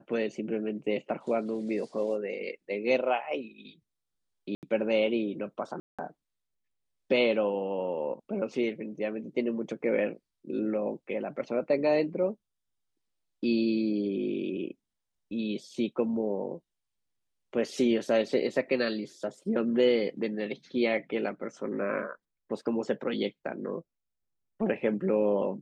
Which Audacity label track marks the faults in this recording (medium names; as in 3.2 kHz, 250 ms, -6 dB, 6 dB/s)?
4.550000	4.630000	dropout 78 ms
5.800000	5.990000	dropout 186 ms